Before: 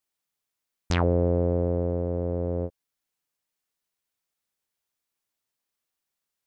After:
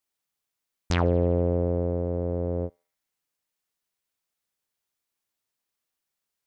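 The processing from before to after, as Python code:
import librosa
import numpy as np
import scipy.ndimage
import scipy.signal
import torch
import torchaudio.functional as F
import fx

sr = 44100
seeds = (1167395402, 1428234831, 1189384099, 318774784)

y = fx.echo_banded(x, sr, ms=74, feedback_pct=77, hz=2400.0, wet_db=-22)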